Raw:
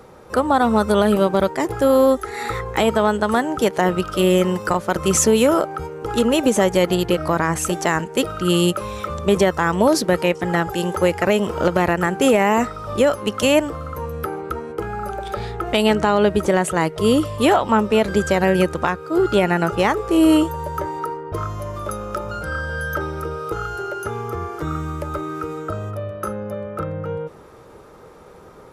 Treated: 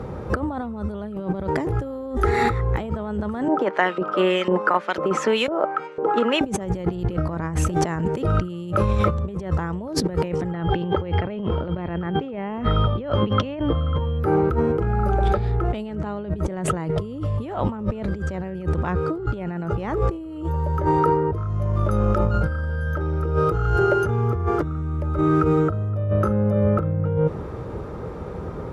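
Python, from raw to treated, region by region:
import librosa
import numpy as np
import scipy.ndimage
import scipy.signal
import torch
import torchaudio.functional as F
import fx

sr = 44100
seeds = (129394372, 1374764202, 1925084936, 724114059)

y = fx.chain(x, sr, fx.highpass(hz=200.0, slope=24),
    fx.filter_lfo_bandpass(shape='saw_up', hz=2.0, low_hz=520.0, high_hz=4000.0, q=1.2), at=(3.48, 6.41))
y = fx.lowpass(y, sr, hz=4400.0, slope=24, at=(10.51, 14.18), fade=0.02)
y = fx.dmg_tone(y, sr, hz=3200.0, level_db=-36.0, at=(10.51, 14.18), fade=0.02)
y = scipy.signal.sosfilt(scipy.signal.butter(2, 63.0, 'highpass', fs=sr, output='sos'), y)
y = fx.riaa(y, sr, side='playback')
y = fx.over_compress(y, sr, threshold_db=-24.0, ratio=-1.0)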